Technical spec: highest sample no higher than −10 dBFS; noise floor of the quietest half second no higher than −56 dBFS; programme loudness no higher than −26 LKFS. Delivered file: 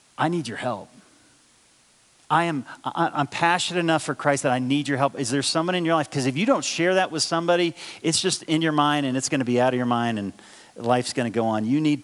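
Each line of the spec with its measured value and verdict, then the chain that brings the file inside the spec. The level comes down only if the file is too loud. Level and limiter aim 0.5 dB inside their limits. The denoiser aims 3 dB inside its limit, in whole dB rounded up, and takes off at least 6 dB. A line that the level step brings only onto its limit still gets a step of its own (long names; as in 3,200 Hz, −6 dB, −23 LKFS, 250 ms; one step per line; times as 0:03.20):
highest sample −4.5 dBFS: out of spec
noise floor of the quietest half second −58 dBFS: in spec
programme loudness −23.0 LKFS: out of spec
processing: level −3.5 dB
brickwall limiter −10.5 dBFS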